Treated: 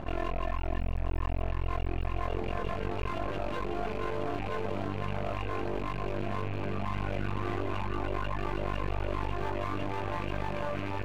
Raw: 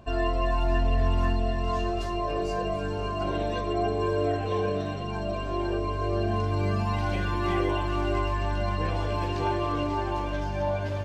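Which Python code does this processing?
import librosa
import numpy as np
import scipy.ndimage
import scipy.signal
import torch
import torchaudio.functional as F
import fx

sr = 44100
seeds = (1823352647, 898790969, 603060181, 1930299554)

p1 = fx.rattle_buzz(x, sr, strikes_db=-32.0, level_db=-26.0)
p2 = fx.peak_eq(p1, sr, hz=4700.0, db=-6.0, octaves=1.2, at=(0.9, 1.48))
p3 = p2 + fx.echo_single(p2, sr, ms=981, db=-5.5, dry=0)
p4 = fx.dereverb_blind(p3, sr, rt60_s=0.82)
p5 = fx.air_absorb(p4, sr, metres=400.0)
p6 = np.maximum(p5, 0.0)
p7 = fx.notch(p6, sr, hz=5200.0, q=23.0)
p8 = fx.env_flatten(p7, sr, amount_pct=70)
y = p8 * 10.0 ** (-6.5 / 20.0)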